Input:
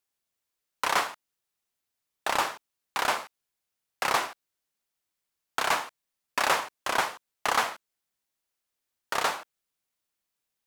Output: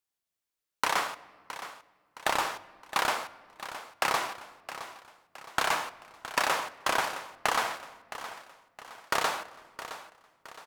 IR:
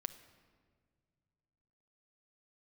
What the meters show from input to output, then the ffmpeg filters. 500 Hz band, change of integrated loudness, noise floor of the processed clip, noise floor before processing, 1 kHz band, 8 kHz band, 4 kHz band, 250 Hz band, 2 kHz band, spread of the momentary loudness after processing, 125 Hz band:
−1.0 dB, −2.5 dB, below −85 dBFS, −85 dBFS, −1.0 dB, −1.0 dB, −1.0 dB, −0.5 dB, −1.0 dB, 17 LU, +0.5 dB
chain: -filter_complex "[0:a]agate=range=-11dB:threshold=-39dB:ratio=16:detection=peak,acompressor=threshold=-31dB:ratio=6,aecho=1:1:666|1332|1998|2664:0.224|0.0963|0.0414|0.0178,asplit=2[link_01][link_02];[1:a]atrim=start_sample=2205[link_03];[link_02][link_03]afir=irnorm=-1:irlink=0,volume=4dB[link_04];[link_01][link_04]amix=inputs=2:normalize=0"

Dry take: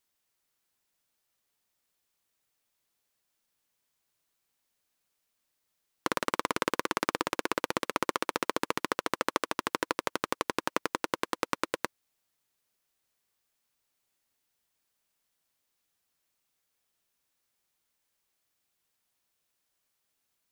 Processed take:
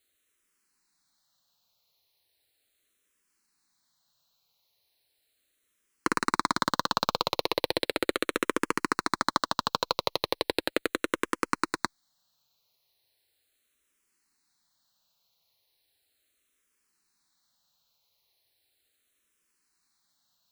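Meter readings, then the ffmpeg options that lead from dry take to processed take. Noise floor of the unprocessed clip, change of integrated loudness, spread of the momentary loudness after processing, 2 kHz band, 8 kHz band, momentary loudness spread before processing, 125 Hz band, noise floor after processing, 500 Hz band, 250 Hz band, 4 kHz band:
−80 dBFS, +3.0 dB, 3 LU, +2.0 dB, +1.0 dB, 3 LU, +3.5 dB, −76 dBFS, +2.5 dB, +3.0 dB, +6.0 dB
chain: -filter_complex "[0:a]equalizer=frequency=4100:width_type=o:width=0.29:gain=11,acontrast=67,asplit=2[link_01][link_02];[link_02]afreqshift=-0.37[link_03];[link_01][link_03]amix=inputs=2:normalize=1"

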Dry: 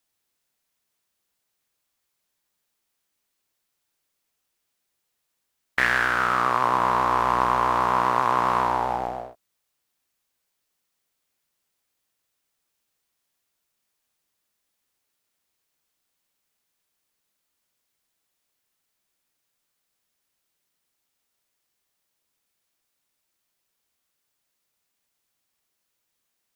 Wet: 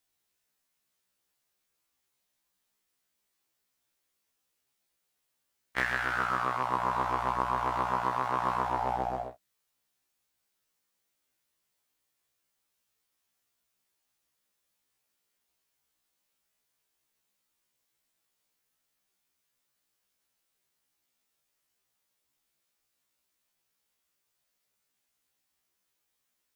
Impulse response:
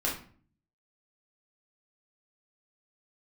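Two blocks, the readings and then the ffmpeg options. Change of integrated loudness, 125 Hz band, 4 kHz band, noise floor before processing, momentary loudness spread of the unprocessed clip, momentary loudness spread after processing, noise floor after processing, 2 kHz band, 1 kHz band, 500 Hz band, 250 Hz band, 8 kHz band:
−8.5 dB, −5.0 dB, −8.5 dB, −78 dBFS, 7 LU, 4 LU, −80 dBFS, −8.5 dB, −8.0 dB, −7.5 dB, −7.0 dB, can't be measured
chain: -af "acompressor=threshold=-24dB:ratio=6,afftfilt=real='re*1.73*eq(mod(b,3),0)':imag='im*1.73*eq(mod(b,3),0)':win_size=2048:overlap=0.75"

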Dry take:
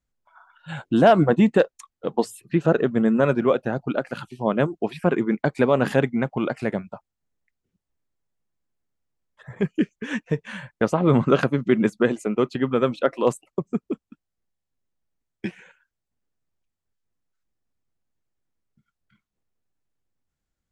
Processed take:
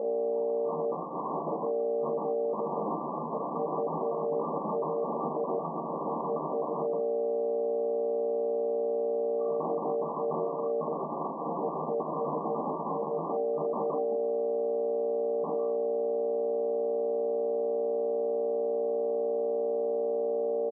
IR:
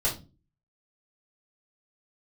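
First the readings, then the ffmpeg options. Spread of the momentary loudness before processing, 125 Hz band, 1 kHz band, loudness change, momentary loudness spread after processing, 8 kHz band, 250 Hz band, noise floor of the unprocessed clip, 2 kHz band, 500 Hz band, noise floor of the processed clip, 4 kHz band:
15 LU, −18.0 dB, −3.0 dB, −8.5 dB, 3 LU, below −30 dB, −14.5 dB, −84 dBFS, below −40 dB, −2.5 dB, −35 dBFS, below −40 dB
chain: -filter_complex "[0:a]aeval=exprs='val(0)+0.0178*(sin(2*PI*60*n/s)+sin(2*PI*2*60*n/s)/2+sin(2*PI*3*60*n/s)/3+sin(2*PI*4*60*n/s)/4+sin(2*PI*5*60*n/s)/5)':channel_layout=same,equalizer=frequency=480:width_type=o:width=0.84:gain=-12.5,bandreject=frequency=50:width_type=h:width=6,bandreject=frequency=100:width_type=h:width=6,bandreject=frequency=150:width_type=h:width=6,bandreject=frequency=200:width_type=h:width=6,bandreject=frequency=250:width_type=h:width=6,aecho=1:1:3:0.49,acontrast=22,aeval=exprs='val(0)*sin(2*PI*520*n/s)':channel_layout=same,aresample=11025,aeval=exprs='(mod(3.98*val(0)+1,2)-1)/3.98':channel_layout=same,aresample=44100,acrusher=bits=7:mix=0:aa=0.000001,aeval=exprs='(mod(16.8*val(0)+1,2)-1)/16.8':channel_layout=same,afftfilt=real='re*between(b*sr/4096,140,1200)':imag='im*between(b*sr/4096,140,1200)':win_size=4096:overlap=0.75,asplit=2[link_01][link_02];[link_02]aecho=0:1:13|43:0.422|0.398[link_03];[link_01][link_03]amix=inputs=2:normalize=0,volume=2.5dB"

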